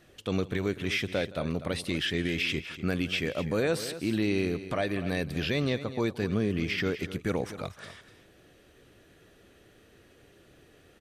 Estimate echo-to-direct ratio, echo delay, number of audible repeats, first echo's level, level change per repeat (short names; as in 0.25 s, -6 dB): -12.5 dB, 0.168 s, 2, -19.5 dB, no steady repeat